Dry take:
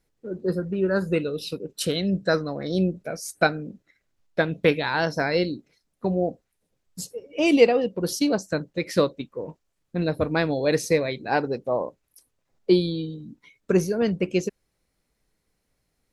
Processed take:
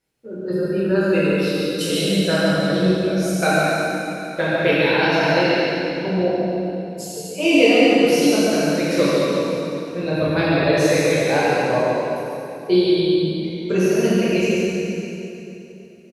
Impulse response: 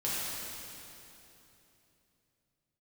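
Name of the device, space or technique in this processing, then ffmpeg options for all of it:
PA in a hall: -filter_complex "[0:a]highpass=f=140:p=1,equalizer=f=2700:t=o:w=0.43:g=5.5,aecho=1:1:141:0.631[s0];[1:a]atrim=start_sample=2205[s1];[s0][s1]afir=irnorm=-1:irlink=0,volume=0.794"

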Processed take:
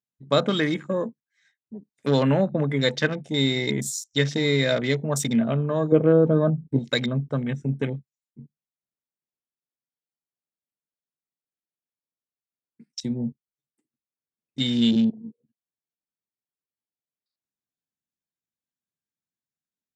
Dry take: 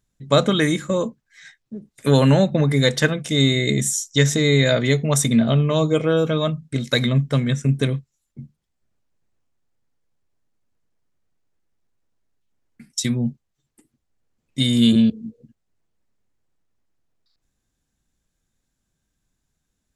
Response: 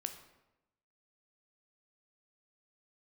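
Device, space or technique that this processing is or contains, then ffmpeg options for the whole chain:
over-cleaned archive recording: -filter_complex "[0:a]asettb=1/sr,asplit=3[s0][s1][s2];[s0]atrim=end=5.924[s3];[s1]atrim=start=5.92:end=6.79,asetpts=PTS-STARTPTS,afade=t=in:d=0.004:c=qsin,afade=t=out:st=0.866:d=0.004:c=qsin,tiltshelf=f=1100:g=8.5[s4];[s2]atrim=start=6.786[s5];[s3][s4]acrossfade=d=0.004:c1=hsin:c2=qsin[s6];[s6][s5]acrossfade=d=0.004:c1=qsin:c2=hsin,highpass=150,lowpass=7800,afwtdn=0.0251,volume=0.631"

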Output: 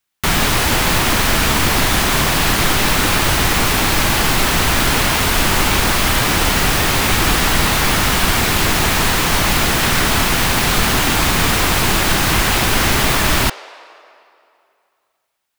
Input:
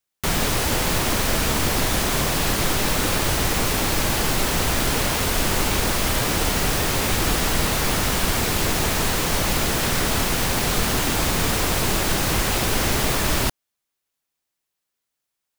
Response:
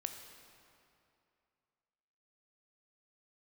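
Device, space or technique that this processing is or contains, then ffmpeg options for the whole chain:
filtered reverb send: -filter_complex "[0:a]asplit=2[s0][s1];[s1]highpass=f=490:w=0.5412,highpass=f=490:w=1.3066,lowpass=4400[s2];[1:a]atrim=start_sample=2205[s3];[s2][s3]afir=irnorm=-1:irlink=0,volume=0.631[s4];[s0][s4]amix=inputs=2:normalize=0,volume=1.88"

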